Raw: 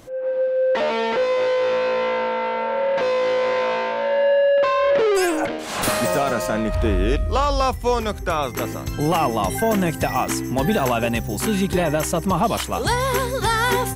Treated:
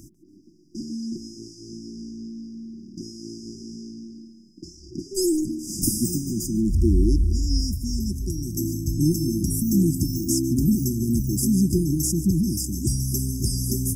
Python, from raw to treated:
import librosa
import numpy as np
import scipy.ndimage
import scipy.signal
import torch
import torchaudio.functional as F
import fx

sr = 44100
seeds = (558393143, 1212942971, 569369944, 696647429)

y = fx.brickwall_bandstop(x, sr, low_hz=370.0, high_hz=4800.0)
y = fx.echo_feedback(y, sr, ms=145, feedback_pct=51, wet_db=-20.0)
y = y * librosa.db_to_amplitude(2.5)